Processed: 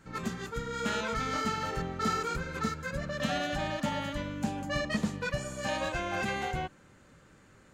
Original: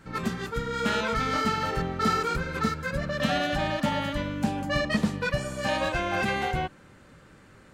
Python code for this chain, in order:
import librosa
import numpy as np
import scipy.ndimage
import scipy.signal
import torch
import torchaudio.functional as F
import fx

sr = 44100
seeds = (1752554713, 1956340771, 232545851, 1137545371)

y = fx.peak_eq(x, sr, hz=6800.0, db=7.0, octaves=0.31)
y = y * 10.0 ** (-5.5 / 20.0)